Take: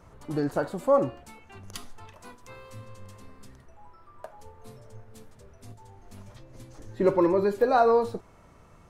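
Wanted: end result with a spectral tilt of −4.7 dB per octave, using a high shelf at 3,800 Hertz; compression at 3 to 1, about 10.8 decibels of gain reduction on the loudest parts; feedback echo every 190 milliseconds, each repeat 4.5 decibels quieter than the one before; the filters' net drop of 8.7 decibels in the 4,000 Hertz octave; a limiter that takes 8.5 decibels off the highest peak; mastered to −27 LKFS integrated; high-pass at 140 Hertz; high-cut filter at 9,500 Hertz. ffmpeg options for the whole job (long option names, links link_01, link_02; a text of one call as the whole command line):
ffmpeg -i in.wav -af "highpass=140,lowpass=9500,highshelf=frequency=3800:gain=-5.5,equalizer=frequency=4000:width_type=o:gain=-7,acompressor=threshold=-32dB:ratio=3,alimiter=level_in=5dB:limit=-24dB:level=0:latency=1,volume=-5dB,aecho=1:1:190|380|570|760|950|1140|1330|1520|1710:0.596|0.357|0.214|0.129|0.0772|0.0463|0.0278|0.0167|0.01,volume=13dB" out.wav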